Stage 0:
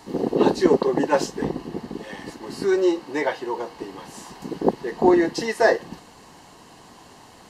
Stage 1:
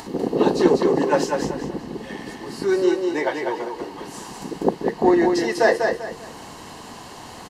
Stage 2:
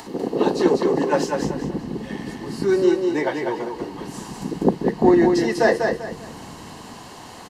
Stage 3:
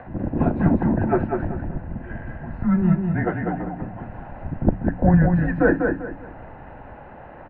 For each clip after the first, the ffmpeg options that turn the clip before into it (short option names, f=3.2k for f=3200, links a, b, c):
-filter_complex "[0:a]acompressor=mode=upward:threshold=-31dB:ratio=2.5,asplit=2[a][b];[b]aecho=0:1:196|392|588|784:0.596|0.179|0.0536|0.0161[c];[a][c]amix=inputs=2:normalize=0"
-filter_complex "[0:a]lowshelf=f=120:g=-5.5,acrossover=split=240|2200[a][b][c];[a]dynaudnorm=f=410:g=7:m=11.5dB[d];[d][b][c]amix=inputs=3:normalize=0,volume=-1dB"
-af "bandreject=f=72.62:t=h:w=4,bandreject=f=145.24:t=h:w=4,bandreject=f=217.86:t=h:w=4,bandreject=f=290.48:t=h:w=4,bandreject=f=363.1:t=h:w=4,bandreject=f=435.72:t=h:w=4,highpass=f=160:t=q:w=0.5412,highpass=f=160:t=q:w=1.307,lowpass=f=2.2k:t=q:w=0.5176,lowpass=f=2.2k:t=q:w=0.7071,lowpass=f=2.2k:t=q:w=1.932,afreqshift=-180"